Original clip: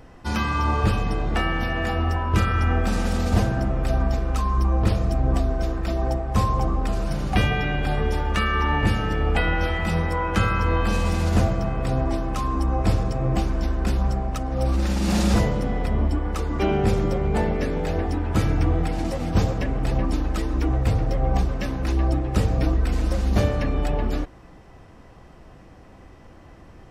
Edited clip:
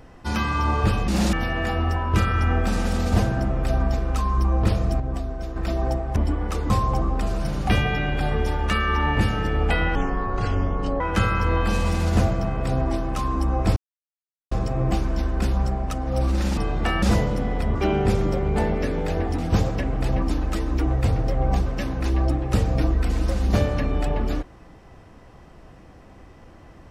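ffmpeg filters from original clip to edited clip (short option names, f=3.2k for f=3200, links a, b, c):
-filter_complex "[0:a]asplit=14[a][b][c][d][e][f][g][h][i][j][k][l][m][n];[a]atrim=end=1.082[o];[b]atrim=start=15.018:end=15.272[p];[c]atrim=start=1.528:end=5.202[q];[d]atrim=start=5.198:end=5.762,asetpts=PTS-STARTPTS,volume=-6.5dB[r];[e]atrim=start=5.758:end=6.362[s];[f]atrim=start=15.998:end=16.542[t];[g]atrim=start=6.358:end=9.614[u];[h]atrim=start=9.61:end=10.2,asetpts=PTS-STARTPTS,asetrate=24696,aresample=44100,atrim=end_sample=46462,asetpts=PTS-STARTPTS[v];[i]atrim=start=10.196:end=12.96,asetpts=PTS-STARTPTS,afade=t=out:st=2.76:d=0.004:c=hsin,apad=pad_dur=0.75[w];[j]atrim=start=12.96:end=15.022,asetpts=PTS-STARTPTS,afade=t=in:d=0.004:c=hsin[x];[k]atrim=start=1.078:end=1.532[y];[l]atrim=start=15.268:end=16.002[z];[m]atrim=start=16.538:end=18.172[aa];[n]atrim=start=19.208[ab];[o][p]acrossfade=d=0.004:c1=hsin:c2=hsin[ac];[ac][q]acrossfade=d=0.004:c1=hsin:c2=hsin[ad];[ad][r]acrossfade=d=0.004:c1=hsin:c2=hsin[ae];[ae][s]acrossfade=d=0.004:c1=hsin:c2=hsin[af];[af][t]acrossfade=d=0.004:c1=hsin:c2=hsin[ag];[ag][u]acrossfade=d=0.004:c1=hsin:c2=hsin[ah];[ah][v]acrossfade=d=0.004:c1=hsin:c2=hsin[ai];[w][x]concat=n=2:v=0:a=1[aj];[ai][aj]acrossfade=d=0.004:c1=hsin:c2=hsin[ak];[ak][y]acrossfade=d=0.004:c1=hsin:c2=hsin[al];[al][z]acrossfade=d=0.004:c1=hsin:c2=hsin[am];[am][aa]acrossfade=d=0.004:c1=hsin:c2=hsin[an];[an][ab]acrossfade=d=0.004:c1=hsin:c2=hsin"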